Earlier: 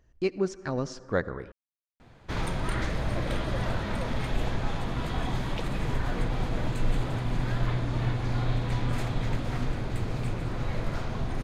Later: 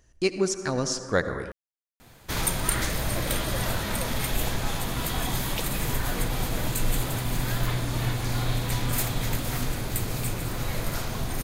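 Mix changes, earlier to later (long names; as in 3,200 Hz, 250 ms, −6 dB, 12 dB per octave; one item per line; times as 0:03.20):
speech: send +9.5 dB
master: remove head-to-tape spacing loss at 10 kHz 23 dB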